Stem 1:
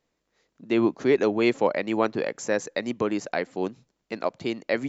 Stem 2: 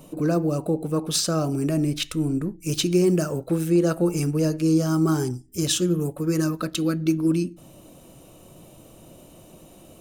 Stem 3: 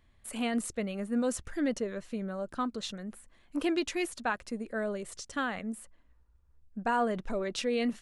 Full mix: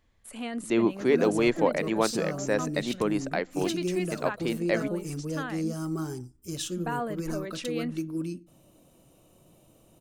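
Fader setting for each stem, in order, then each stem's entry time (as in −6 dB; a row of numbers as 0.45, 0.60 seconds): −2.0, −11.0, −3.5 decibels; 0.00, 0.90, 0.00 seconds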